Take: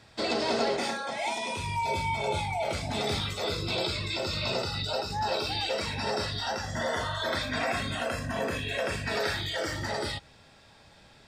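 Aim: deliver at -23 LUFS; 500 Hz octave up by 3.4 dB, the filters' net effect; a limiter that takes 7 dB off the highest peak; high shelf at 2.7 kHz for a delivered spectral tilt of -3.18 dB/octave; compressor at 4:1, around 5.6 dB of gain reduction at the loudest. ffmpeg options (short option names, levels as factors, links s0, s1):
-af "equalizer=f=500:t=o:g=4,highshelf=f=2700:g=6,acompressor=threshold=0.0398:ratio=4,volume=2.99,alimiter=limit=0.188:level=0:latency=1"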